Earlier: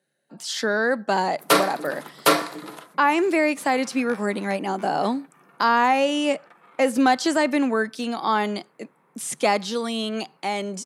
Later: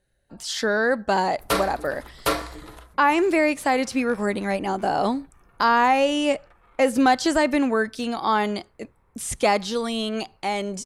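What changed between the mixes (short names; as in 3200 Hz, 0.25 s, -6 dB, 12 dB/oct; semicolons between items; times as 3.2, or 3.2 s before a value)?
background -6.0 dB; master: remove Chebyshev high-pass 150 Hz, order 5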